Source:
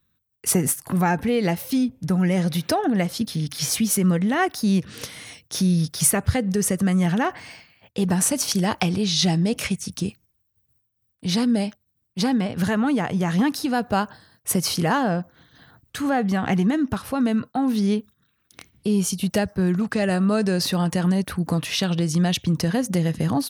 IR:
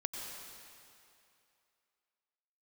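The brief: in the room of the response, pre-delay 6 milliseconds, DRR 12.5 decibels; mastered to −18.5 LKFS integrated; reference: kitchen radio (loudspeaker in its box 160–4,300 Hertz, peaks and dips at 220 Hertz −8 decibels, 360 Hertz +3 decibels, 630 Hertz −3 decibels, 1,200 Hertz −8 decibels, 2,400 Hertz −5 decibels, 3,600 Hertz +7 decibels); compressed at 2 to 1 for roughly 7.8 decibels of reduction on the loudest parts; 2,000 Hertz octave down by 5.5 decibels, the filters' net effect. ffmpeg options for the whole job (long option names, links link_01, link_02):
-filter_complex "[0:a]equalizer=frequency=2000:width_type=o:gain=-4.5,acompressor=threshold=-28dB:ratio=2,asplit=2[link_01][link_02];[1:a]atrim=start_sample=2205,adelay=6[link_03];[link_02][link_03]afir=irnorm=-1:irlink=0,volume=-13.5dB[link_04];[link_01][link_04]amix=inputs=2:normalize=0,highpass=160,equalizer=frequency=220:width_type=q:width=4:gain=-8,equalizer=frequency=360:width_type=q:width=4:gain=3,equalizer=frequency=630:width_type=q:width=4:gain=-3,equalizer=frequency=1200:width_type=q:width=4:gain=-8,equalizer=frequency=2400:width_type=q:width=4:gain=-5,equalizer=frequency=3600:width_type=q:width=4:gain=7,lowpass=frequency=4300:width=0.5412,lowpass=frequency=4300:width=1.3066,volume=12.5dB"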